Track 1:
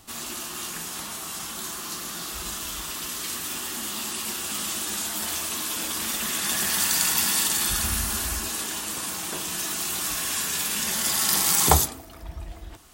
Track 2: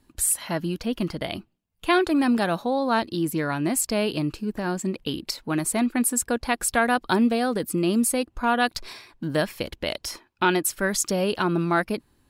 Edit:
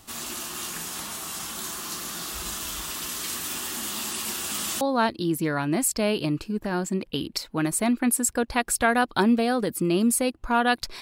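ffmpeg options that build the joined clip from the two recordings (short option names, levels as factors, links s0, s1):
-filter_complex "[0:a]apad=whole_dur=11.01,atrim=end=11.01,atrim=end=4.812[s0];[1:a]atrim=start=2.738:end=8.94[s1];[s0][s1]acrossfade=d=0.004:c1=hsin:c2=hsin"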